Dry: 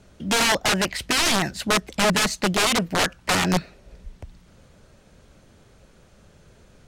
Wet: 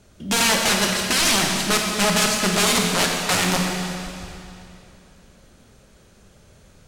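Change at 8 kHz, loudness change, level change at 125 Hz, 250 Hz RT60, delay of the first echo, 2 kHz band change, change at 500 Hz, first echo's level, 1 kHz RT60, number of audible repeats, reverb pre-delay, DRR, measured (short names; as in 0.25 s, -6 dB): +5.5 dB, +2.5 dB, +1.5 dB, 2.7 s, none, +1.5 dB, +1.0 dB, none, 2.7 s, none, 28 ms, 0.5 dB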